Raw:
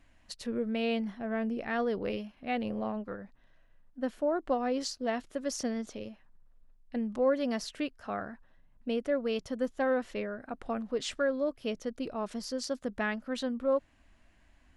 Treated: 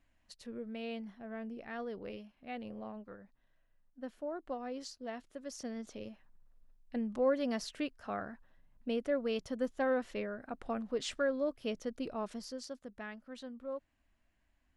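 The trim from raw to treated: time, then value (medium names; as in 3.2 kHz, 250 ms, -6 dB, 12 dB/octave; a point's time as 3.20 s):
5.54 s -10.5 dB
6.09 s -3 dB
12.19 s -3 dB
12.88 s -13 dB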